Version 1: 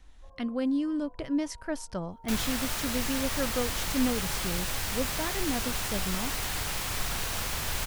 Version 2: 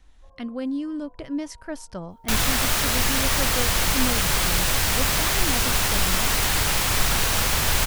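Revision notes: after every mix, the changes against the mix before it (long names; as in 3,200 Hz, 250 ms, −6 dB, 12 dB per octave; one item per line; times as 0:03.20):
second sound +10.5 dB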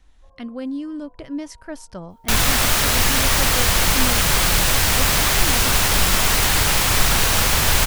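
second sound +4.5 dB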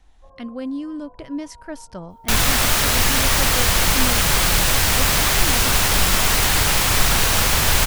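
first sound +7.5 dB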